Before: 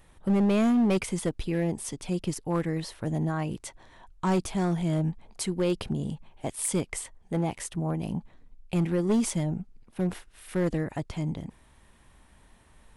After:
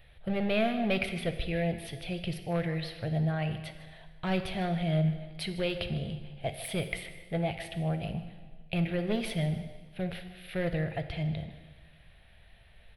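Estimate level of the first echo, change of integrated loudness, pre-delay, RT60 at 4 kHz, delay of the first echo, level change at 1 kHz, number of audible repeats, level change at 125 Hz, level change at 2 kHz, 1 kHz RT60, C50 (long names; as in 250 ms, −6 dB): −16.0 dB, −3.5 dB, 4 ms, 1.4 s, 154 ms, −2.5 dB, 1, −1.5 dB, +3.5 dB, 1.5 s, 9.0 dB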